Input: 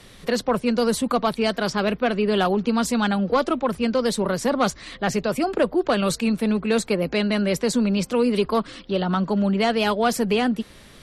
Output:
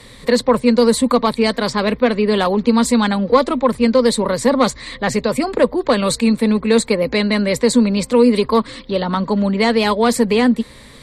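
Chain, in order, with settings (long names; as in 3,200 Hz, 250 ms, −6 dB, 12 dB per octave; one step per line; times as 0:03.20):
EQ curve with evenly spaced ripples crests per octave 0.99, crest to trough 8 dB
level +5 dB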